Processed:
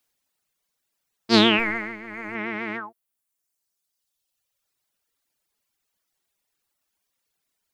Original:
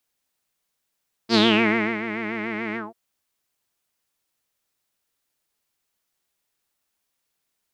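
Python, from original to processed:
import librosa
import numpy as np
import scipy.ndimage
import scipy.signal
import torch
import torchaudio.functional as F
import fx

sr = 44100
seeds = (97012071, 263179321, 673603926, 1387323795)

y = fx.halfwave_gain(x, sr, db=-3.0, at=(1.59, 2.35))
y = fx.dereverb_blind(y, sr, rt60_s=1.7)
y = y * librosa.db_to_amplitude(2.5)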